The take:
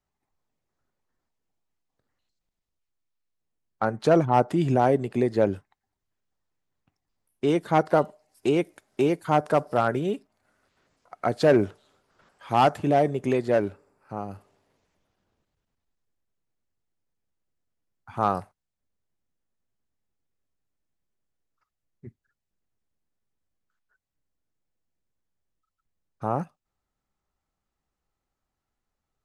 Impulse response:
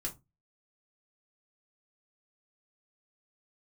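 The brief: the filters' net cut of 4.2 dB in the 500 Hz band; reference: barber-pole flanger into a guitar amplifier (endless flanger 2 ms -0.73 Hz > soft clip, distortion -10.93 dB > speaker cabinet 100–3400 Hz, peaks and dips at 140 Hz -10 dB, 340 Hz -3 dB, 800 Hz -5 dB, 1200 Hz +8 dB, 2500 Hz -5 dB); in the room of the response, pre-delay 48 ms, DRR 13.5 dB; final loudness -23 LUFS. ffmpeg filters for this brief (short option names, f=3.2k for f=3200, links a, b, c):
-filter_complex "[0:a]equalizer=f=500:t=o:g=-4,asplit=2[a][b];[1:a]atrim=start_sample=2205,adelay=48[c];[b][c]afir=irnorm=-1:irlink=0,volume=-13.5dB[d];[a][d]amix=inputs=2:normalize=0,asplit=2[e][f];[f]adelay=2,afreqshift=-0.73[g];[e][g]amix=inputs=2:normalize=1,asoftclip=threshold=-24dB,highpass=100,equalizer=f=140:t=q:w=4:g=-10,equalizer=f=340:t=q:w=4:g=-3,equalizer=f=800:t=q:w=4:g=-5,equalizer=f=1.2k:t=q:w=4:g=8,equalizer=f=2.5k:t=q:w=4:g=-5,lowpass=f=3.4k:w=0.5412,lowpass=f=3.4k:w=1.3066,volume=11dB"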